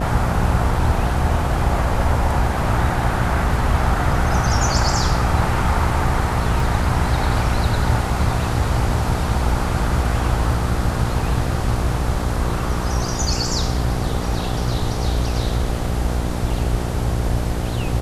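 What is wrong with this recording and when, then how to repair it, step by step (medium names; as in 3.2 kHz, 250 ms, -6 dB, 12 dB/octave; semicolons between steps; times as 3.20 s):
buzz 60 Hz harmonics 13 -24 dBFS
6.60 s: dropout 2.1 ms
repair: de-hum 60 Hz, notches 13; interpolate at 6.60 s, 2.1 ms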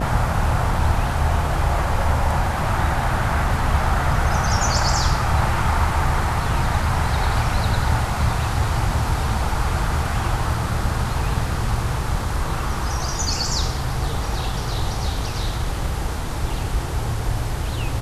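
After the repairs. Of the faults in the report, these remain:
nothing left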